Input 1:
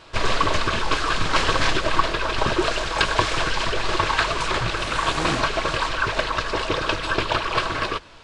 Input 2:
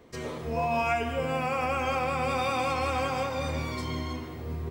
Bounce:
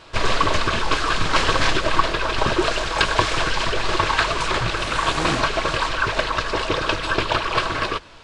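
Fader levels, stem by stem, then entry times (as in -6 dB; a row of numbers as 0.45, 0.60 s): +1.5, -19.5 dB; 0.00, 0.00 s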